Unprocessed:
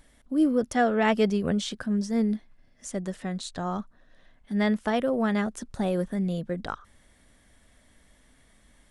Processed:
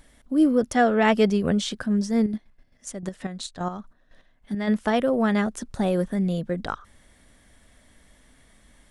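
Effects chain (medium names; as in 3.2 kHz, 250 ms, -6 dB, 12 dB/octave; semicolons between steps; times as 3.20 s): 2.24–4.67 s: square tremolo 9 Hz -> 2.6 Hz, depth 60%, duty 35%; trim +3.5 dB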